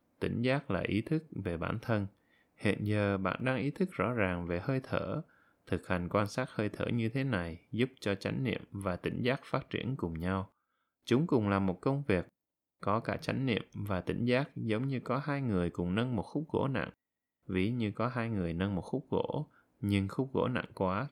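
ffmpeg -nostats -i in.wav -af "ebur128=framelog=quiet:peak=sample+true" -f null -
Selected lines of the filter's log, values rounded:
Integrated loudness:
  I:         -34.0 LUFS
  Threshold: -44.2 LUFS
Loudness range:
  LRA:         1.7 LU
  Threshold: -54.3 LUFS
  LRA low:   -35.2 LUFS
  LRA high:  -33.6 LUFS
Sample peak:
  Peak:      -14.4 dBFS
True peak:
  Peak:      -14.4 dBFS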